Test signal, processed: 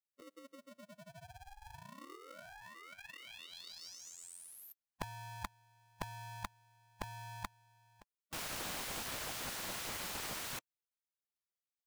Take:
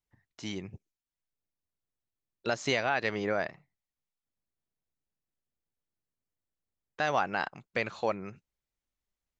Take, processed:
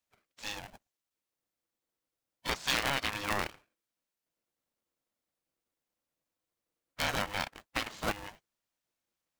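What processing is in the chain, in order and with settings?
spectral gate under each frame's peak -10 dB weak; polarity switched at an audio rate 410 Hz; trim +4 dB

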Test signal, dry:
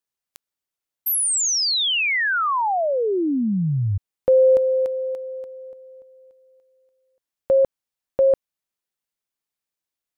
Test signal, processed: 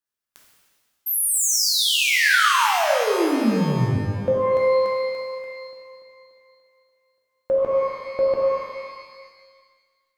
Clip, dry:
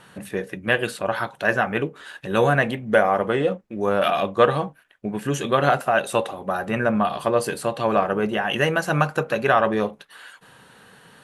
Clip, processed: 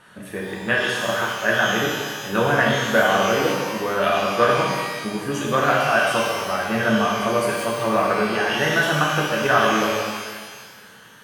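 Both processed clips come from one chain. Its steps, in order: peaking EQ 1.5 kHz +4 dB 0.77 oct; pitch-shifted reverb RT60 1.6 s, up +12 st, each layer -8 dB, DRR -3 dB; trim -4.5 dB

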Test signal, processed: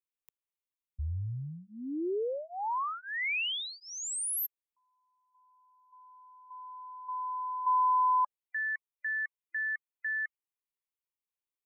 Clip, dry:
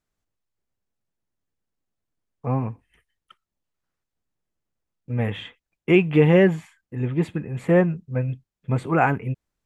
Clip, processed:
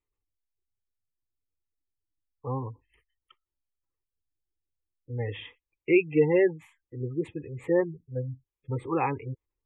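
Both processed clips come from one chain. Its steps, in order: spectral gate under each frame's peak -25 dB strong; static phaser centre 1 kHz, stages 8; trim -3 dB

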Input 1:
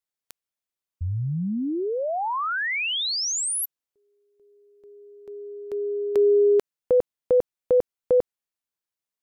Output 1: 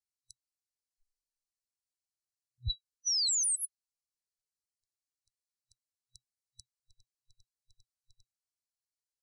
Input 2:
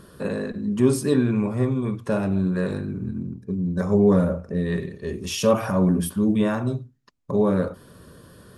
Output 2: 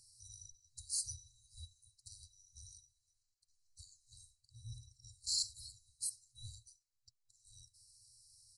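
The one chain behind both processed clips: every band turned upside down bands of 2 kHz; FFT band-reject 120–3900 Hz; resampled via 22.05 kHz; trim -3 dB

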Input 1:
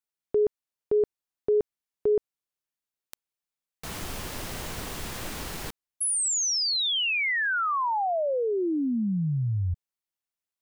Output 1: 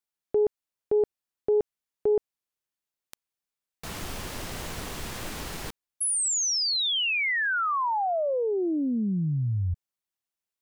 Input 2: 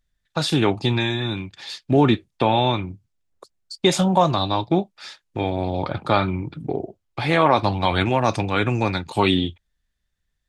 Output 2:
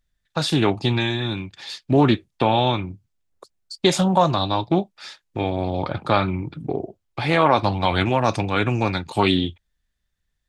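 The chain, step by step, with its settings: loudspeaker Doppler distortion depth 0.14 ms

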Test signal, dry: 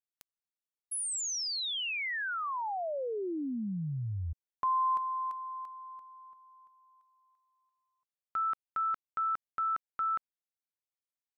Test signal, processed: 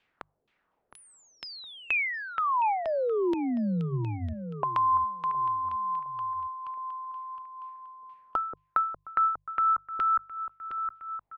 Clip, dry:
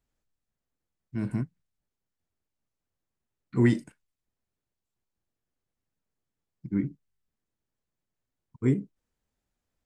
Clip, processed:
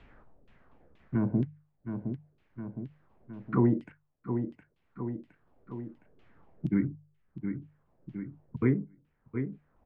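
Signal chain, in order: hum notches 50/100/150 Hz; LFO low-pass saw down 2.1 Hz 390–3100 Hz; treble shelf 3.8 kHz -7.5 dB; on a send: feedback delay 714 ms, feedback 32%, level -16.5 dB; on the sum: three bands compressed up and down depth 70%; trim +5.5 dB

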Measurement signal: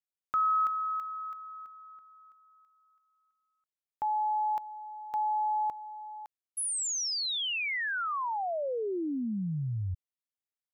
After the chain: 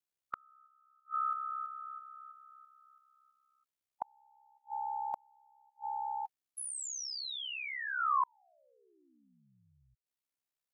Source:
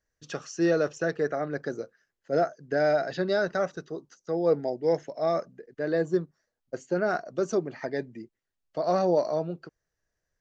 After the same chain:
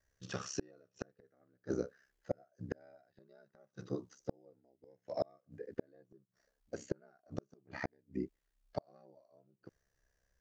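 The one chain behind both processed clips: harmonic-percussive split percussive -14 dB; ring modulator 33 Hz; inverted gate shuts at -30 dBFS, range -42 dB; trim +8.5 dB

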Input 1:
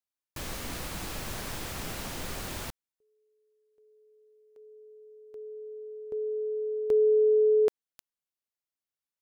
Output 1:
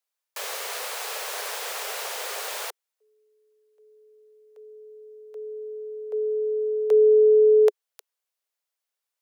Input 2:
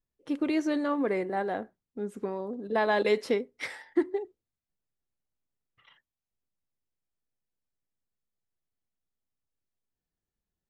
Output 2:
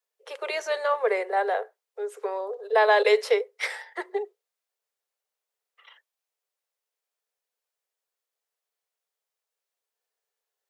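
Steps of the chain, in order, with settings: steep high-pass 410 Hz 96 dB/octave; trim +7 dB

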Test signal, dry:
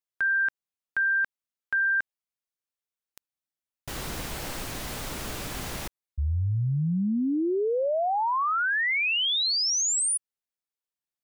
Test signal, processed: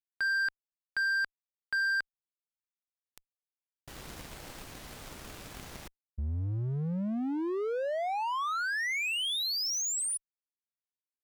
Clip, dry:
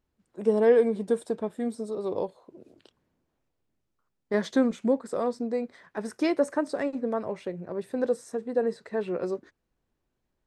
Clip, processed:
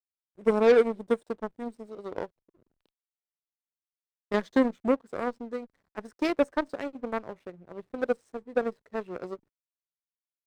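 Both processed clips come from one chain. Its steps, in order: hysteresis with a dead band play -43.5 dBFS; Chebyshev shaper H 2 -38 dB, 7 -19 dB, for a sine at -10.5 dBFS

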